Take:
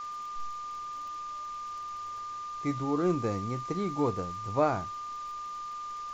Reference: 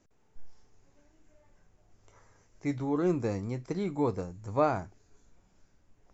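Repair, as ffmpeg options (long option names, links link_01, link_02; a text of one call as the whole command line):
ffmpeg -i in.wav -af "adeclick=threshold=4,bandreject=frequency=1200:width=30,afwtdn=0.0028" out.wav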